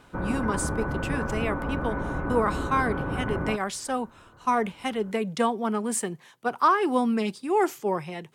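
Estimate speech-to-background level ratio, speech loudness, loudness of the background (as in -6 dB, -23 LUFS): 3.5 dB, -27.5 LUFS, -31.0 LUFS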